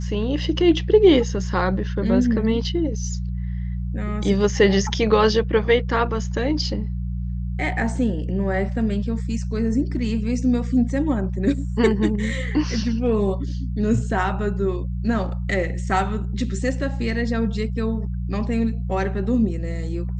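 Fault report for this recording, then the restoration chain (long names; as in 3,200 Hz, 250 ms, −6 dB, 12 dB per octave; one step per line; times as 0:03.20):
mains hum 60 Hz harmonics 3 −26 dBFS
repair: hum removal 60 Hz, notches 3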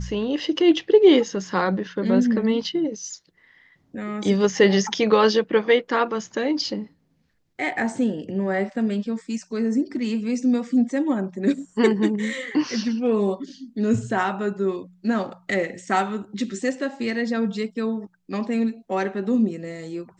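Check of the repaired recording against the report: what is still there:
none of them is left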